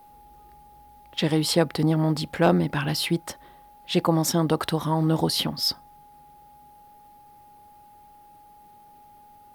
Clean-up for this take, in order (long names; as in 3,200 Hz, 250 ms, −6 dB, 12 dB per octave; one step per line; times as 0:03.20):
clipped peaks rebuilt −7.5 dBFS
notch filter 830 Hz, Q 30